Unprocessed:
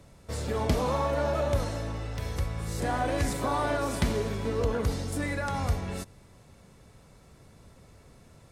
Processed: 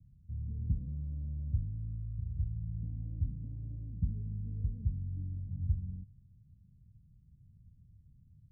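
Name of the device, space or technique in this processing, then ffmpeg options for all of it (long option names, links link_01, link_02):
the neighbour's flat through the wall: -af "lowpass=frequency=170:width=0.5412,lowpass=frequency=170:width=1.3066,equalizer=frequency=97:width_type=o:width=0.94:gain=3.5,volume=-5.5dB"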